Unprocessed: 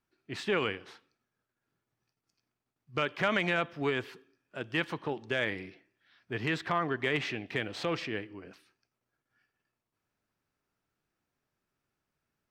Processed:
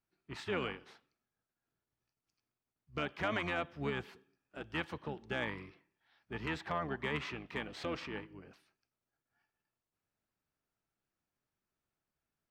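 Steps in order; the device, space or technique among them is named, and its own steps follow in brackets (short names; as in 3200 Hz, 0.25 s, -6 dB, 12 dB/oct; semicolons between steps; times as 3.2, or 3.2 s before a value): octave pedal (harmoniser -12 st -6 dB); gain -7.5 dB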